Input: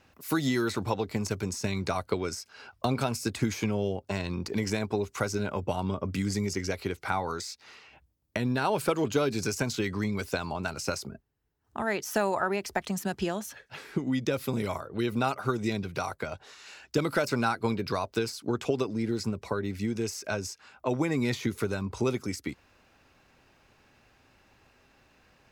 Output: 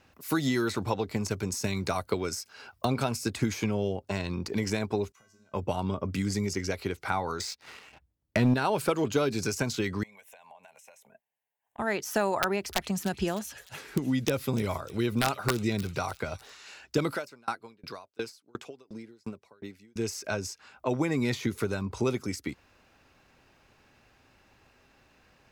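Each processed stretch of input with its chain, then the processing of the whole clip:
1.52–2.85 s: high-pass 51 Hz + treble shelf 9.9 kHz +9.5 dB
5.12–5.54 s: compression 16:1, threshold -40 dBFS + feedback comb 220 Hz, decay 0.66 s, harmonics odd, mix 90%
7.40–8.54 s: tone controls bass +1 dB, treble -6 dB + waveshaping leveller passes 2
10.03–11.79 s: high-pass 530 Hz + compression 8:1, threshold -46 dBFS + static phaser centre 1.3 kHz, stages 6
12.42–16.57 s: bass shelf 76 Hz +10 dB + integer overflow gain 15.5 dB + feedback echo behind a high-pass 302 ms, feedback 50%, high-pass 3.3 kHz, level -11 dB
17.12–19.96 s: high-pass 290 Hz 6 dB/octave + sawtooth tremolo in dB decaying 2.8 Hz, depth 34 dB
whole clip: none

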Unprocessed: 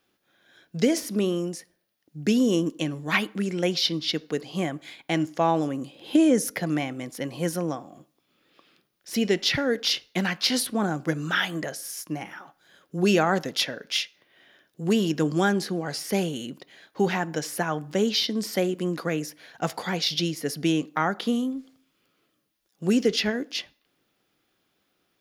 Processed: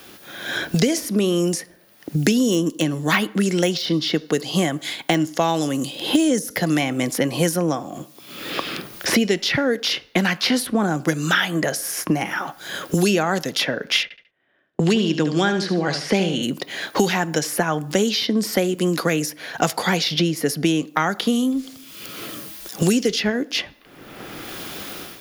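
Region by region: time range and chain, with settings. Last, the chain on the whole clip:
2.31–6.77 s: band-stop 2.4 kHz, Q 11 + de-esser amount 70%
14.03–16.43 s: low-pass 3.7 kHz + gate -51 dBFS, range -39 dB + feedback delay 72 ms, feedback 25%, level -10 dB
whole clip: level rider gain up to 11.5 dB; treble shelf 6.5 kHz +5.5 dB; three bands compressed up and down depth 100%; trim -3.5 dB

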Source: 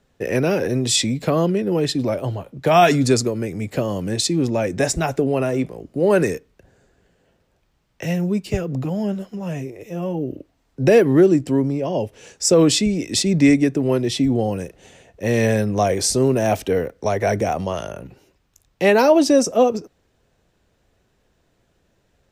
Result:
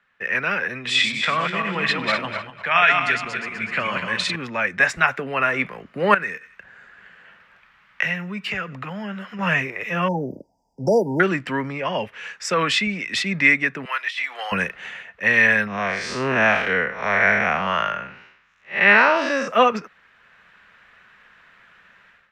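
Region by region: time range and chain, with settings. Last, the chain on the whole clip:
0.75–4.36 s: backward echo that repeats 125 ms, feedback 54%, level -3.5 dB + Chebyshev low-pass 11 kHz, order 6 + peaking EQ 2.5 kHz +4 dB 1 oct
6.14–9.39 s: thinning echo 92 ms, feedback 39%, high-pass 1.2 kHz, level -23 dB + compression 2:1, threshold -40 dBFS
10.08–11.20 s: brick-wall FIR band-stop 960–4700 Hz + dynamic bell 1.6 kHz, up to +3 dB, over -36 dBFS, Q 1.5
13.85–14.52 s: Bessel high-pass 1.2 kHz, order 4 + compressor with a negative ratio -33 dBFS
15.67–19.48 s: spectral blur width 157 ms + low-pass 6.3 kHz
whole clip: FFT filter 200 Hz 0 dB, 310 Hz -18 dB, 740 Hz -10 dB, 1.2 kHz +6 dB, 1.8 kHz +10 dB, 2.7 kHz +8 dB, 8.3 kHz -5 dB; level rider gain up to 14.5 dB; three-band isolator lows -23 dB, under 280 Hz, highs -15 dB, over 2.5 kHz; trim +1.5 dB

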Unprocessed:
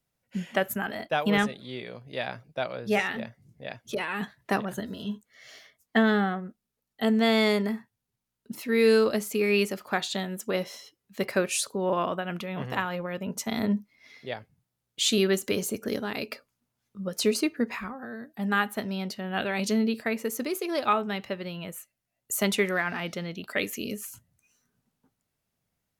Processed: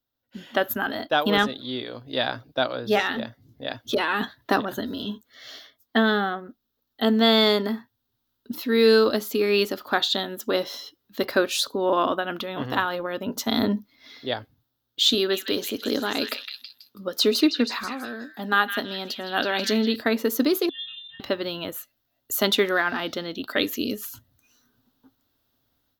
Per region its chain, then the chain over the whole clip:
15.14–19.96 s: high-pass 200 Hz 6 dB/octave + repeats whose band climbs or falls 162 ms, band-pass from 2.5 kHz, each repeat 0.7 oct, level -3.5 dB
20.69–21.20 s: dynamic bell 1.6 kHz, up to -4 dB, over -33 dBFS, Q 0.82 + pitch-class resonator B, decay 0.35 s + frequency inversion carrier 3.8 kHz
whole clip: FFT filter 110 Hz 0 dB, 180 Hz -11 dB, 270 Hz +8 dB, 390 Hz 0 dB, 660 Hz 0 dB, 1.5 kHz +3 dB, 2.3 kHz -7 dB, 3.6 kHz +8 dB, 9.2 kHz -11 dB, 15 kHz +8 dB; level rider gain up to 13 dB; trim -5.5 dB

